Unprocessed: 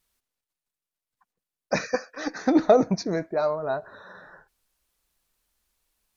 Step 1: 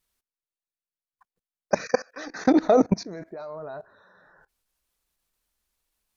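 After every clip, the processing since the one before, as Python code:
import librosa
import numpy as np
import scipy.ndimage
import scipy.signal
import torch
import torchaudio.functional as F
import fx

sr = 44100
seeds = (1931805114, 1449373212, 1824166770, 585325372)

y = fx.level_steps(x, sr, step_db=21)
y = F.gain(torch.from_numpy(y), 5.5).numpy()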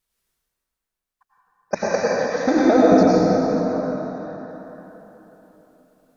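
y = fx.rev_plate(x, sr, seeds[0], rt60_s=3.7, hf_ratio=0.6, predelay_ms=80, drr_db=-8.0)
y = F.gain(torch.from_numpy(y), -1.5).numpy()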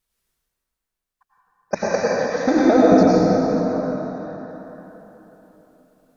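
y = fx.low_shelf(x, sr, hz=180.0, db=3.0)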